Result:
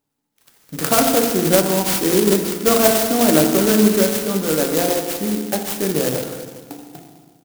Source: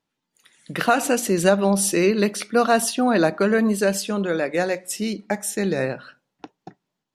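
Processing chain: on a send: delay 345 ms -22.5 dB; on the sum: FDN reverb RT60 1.5 s, low-frequency decay 1.35×, high-frequency decay 0.4×, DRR 1.5 dB; speed mistake 25 fps video run at 24 fps; sampling jitter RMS 0.14 ms; trim +1.5 dB

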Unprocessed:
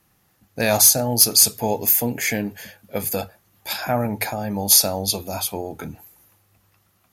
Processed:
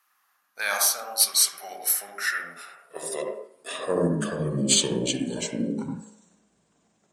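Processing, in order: pitch bend over the whole clip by -10 st starting unshifted; on a send at -2 dB: RIAA curve playback + reverberation RT60 0.60 s, pre-delay 65 ms; on the sum: high-pass sweep 1.2 kHz -> 190 Hz, 2.33–4.32 s; trim -6 dB

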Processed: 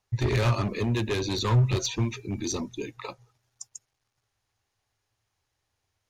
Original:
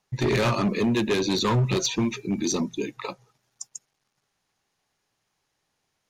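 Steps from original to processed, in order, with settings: resonant low shelf 130 Hz +7.5 dB, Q 3; trim -4 dB

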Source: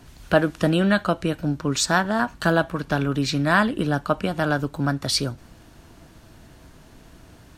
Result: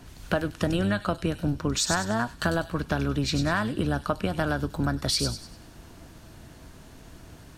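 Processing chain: octave divider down 1 oct, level -5 dB; compression, threshold -22 dBFS, peak gain reduction 11 dB; on a send: feedback echo behind a high-pass 98 ms, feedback 39%, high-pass 4.6 kHz, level -3 dB

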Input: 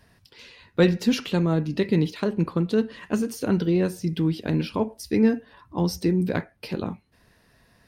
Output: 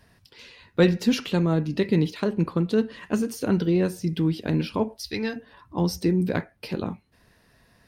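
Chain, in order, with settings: 4.96–5.36 s: graphic EQ 125/250/500/4000/8000 Hz -4/-11/-5/+11/-6 dB

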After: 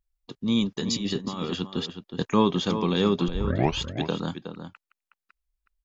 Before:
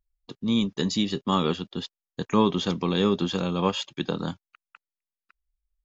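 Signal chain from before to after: 0.77–2.30 s: compressor with a negative ratio -27 dBFS, ratio -0.5; 3.28 s: tape start 0.50 s; echo from a far wall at 63 m, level -9 dB

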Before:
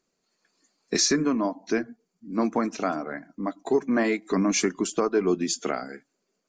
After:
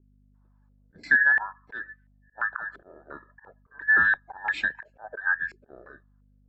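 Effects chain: every band turned upside down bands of 2 kHz; hum 50 Hz, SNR 27 dB; slow attack 146 ms; step-sequenced low-pass 2.9 Hz 380–2300 Hz; trim -7.5 dB

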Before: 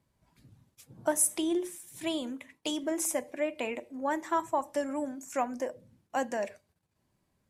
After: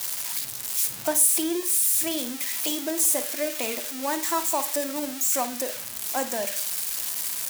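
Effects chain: zero-crossing glitches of -20.5 dBFS; flutter echo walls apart 9.3 m, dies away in 0.28 s; trim +2 dB

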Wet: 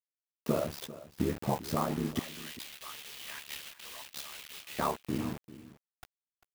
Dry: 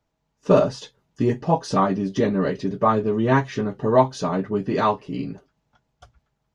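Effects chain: spectral noise reduction 6 dB; compression 4:1, threshold -26 dBFS, peak gain reduction 13.5 dB; ring modulator 36 Hz; bit crusher 7-bit; 2.19–4.79 s: resonant high-pass 2.9 kHz, resonance Q 2; delay 395 ms -16.5 dB; sampling jitter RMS 0.032 ms

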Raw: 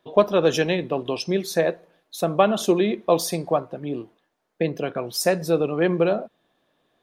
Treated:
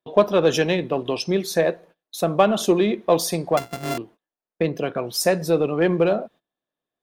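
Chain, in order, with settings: 3.57–3.98 s: sorted samples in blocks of 64 samples; gate -47 dBFS, range -22 dB; in parallel at -12 dB: overload inside the chain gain 19.5 dB

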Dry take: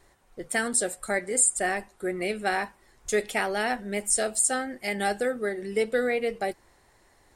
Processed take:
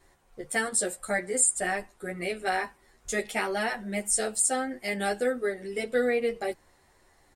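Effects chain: endless flanger 10.7 ms -0.29 Hz; trim +1.5 dB

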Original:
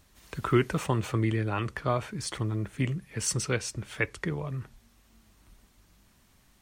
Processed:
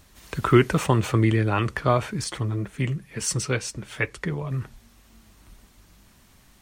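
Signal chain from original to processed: 2.24–4.51 s: flange 2 Hz, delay 4 ms, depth 4.2 ms, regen -43%; trim +7 dB

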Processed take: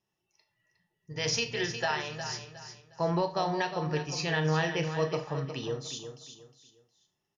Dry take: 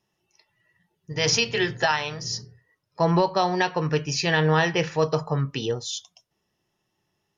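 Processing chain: feedback delay 360 ms, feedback 30%, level -9.5 dB; Schroeder reverb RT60 0.31 s, combs from 26 ms, DRR 9 dB; trim -8.5 dB

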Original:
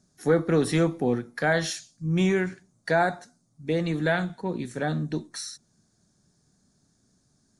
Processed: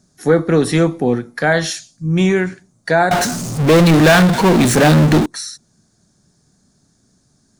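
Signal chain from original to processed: 3.11–5.26 s: power-law waveshaper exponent 0.35; trim +8.5 dB

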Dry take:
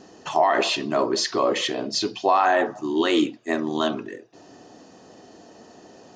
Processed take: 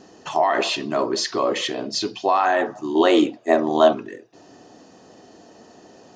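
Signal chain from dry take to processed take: 2.95–3.93 s: peaking EQ 660 Hz +13 dB 1.2 oct

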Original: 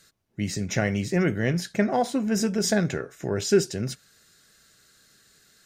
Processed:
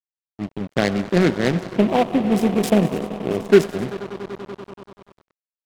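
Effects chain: local Wiener filter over 41 samples; on a send at -20.5 dB: high-order bell 900 Hz +13 dB + reverberation RT60 4.0 s, pre-delay 88 ms; on the sum: level-controlled noise filter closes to 530 Hz, open at -21.5 dBFS; Chebyshev high-pass 210 Hz, order 2; distance through air 64 m; echo with a slow build-up 96 ms, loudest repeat 5, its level -17.5 dB; level rider gain up to 6 dB; level-controlled noise filter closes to 490 Hz, open at -16.5 dBFS; crossover distortion -33 dBFS; 1.78–3.50 s: elliptic band-stop 1.2–5.3 kHz; delay time shaken by noise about 1.9 kHz, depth 0.048 ms; trim +3.5 dB

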